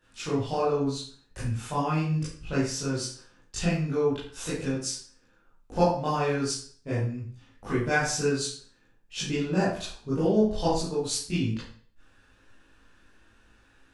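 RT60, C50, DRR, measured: 0.50 s, 2.0 dB, -11.5 dB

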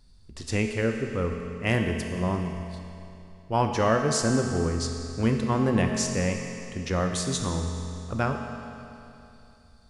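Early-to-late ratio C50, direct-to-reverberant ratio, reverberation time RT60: 4.0 dB, 3.0 dB, 2.9 s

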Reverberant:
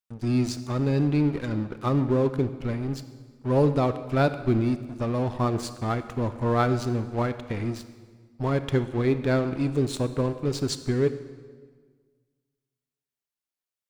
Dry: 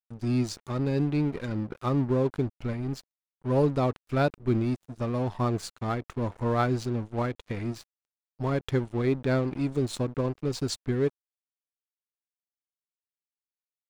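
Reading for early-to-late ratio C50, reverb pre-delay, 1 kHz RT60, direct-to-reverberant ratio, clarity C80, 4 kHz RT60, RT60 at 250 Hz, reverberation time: 12.0 dB, 24 ms, 1.5 s, 11.0 dB, 13.5 dB, 1.3 s, 1.9 s, 1.6 s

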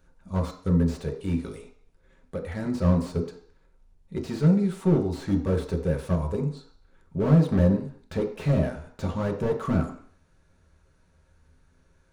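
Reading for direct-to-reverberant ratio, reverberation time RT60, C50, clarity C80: 1.0 dB, 0.55 s, 9.5 dB, 12.5 dB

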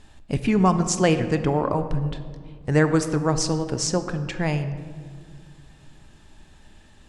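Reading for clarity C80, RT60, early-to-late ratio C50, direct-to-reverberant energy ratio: 12.0 dB, 1.9 s, 11.0 dB, 9.0 dB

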